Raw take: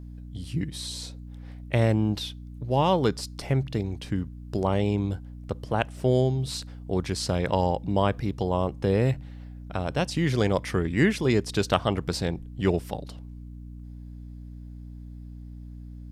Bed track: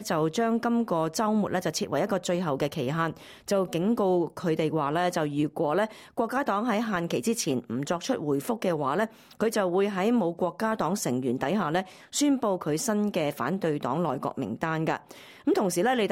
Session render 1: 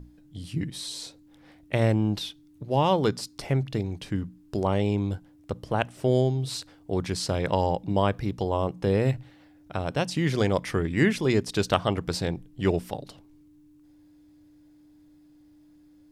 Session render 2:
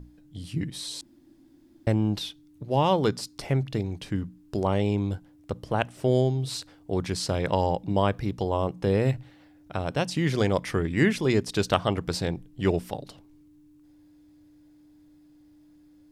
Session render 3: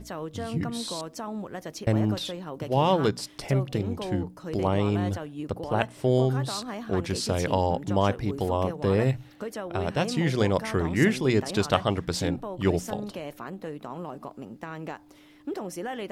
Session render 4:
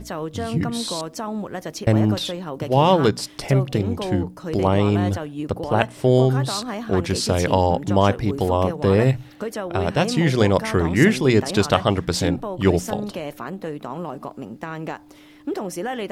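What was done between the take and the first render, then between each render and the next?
notches 60/120/180/240 Hz
1.01–1.87 room tone
add bed track -9.5 dB
gain +6.5 dB; limiter -3 dBFS, peak gain reduction 2 dB

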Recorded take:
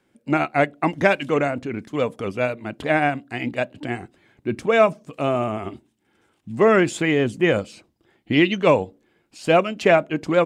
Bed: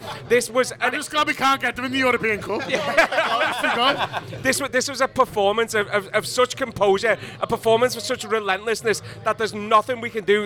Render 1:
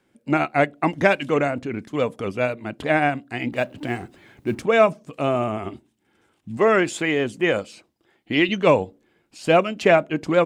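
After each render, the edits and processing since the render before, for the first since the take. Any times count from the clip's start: 3.52–4.62 G.711 law mismatch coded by mu; 6.57–8.49 low shelf 220 Hz -9.5 dB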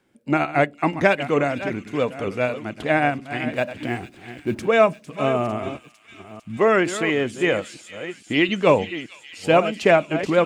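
reverse delay 0.457 s, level -12 dB; thin delay 0.452 s, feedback 72%, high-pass 3200 Hz, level -10.5 dB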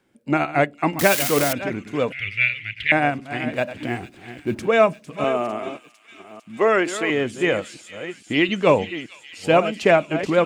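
0.99–1.53 switching spikes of -10.5 dBFS; 2.12–2.92 EQ curve 110 Hz 0 dB, 230 Hz -24 dB, 720 Hz -27 dB, 1000 Hz -30 dB, 2000 Hz +14 dB, 2900 Hz +11 dB, 6900 Hz -11 dB; 5.24–7.1 HPF 260 Hz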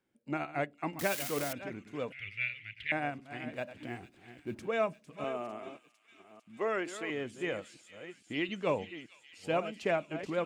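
gain -15 dB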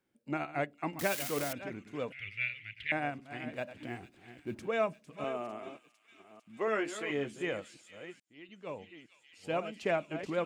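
6.66–7.42 doubler 14 ms -4.5 dB; 8.2–10 fade in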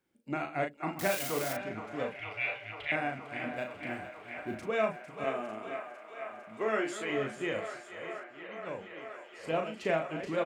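doubler 37 ms -5 dB; on a send: band-limited delay 0.474 s, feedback 84%, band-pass 1100 Hz, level -9 dB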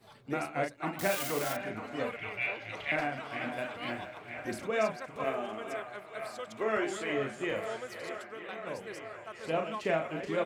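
add bed -24 dB

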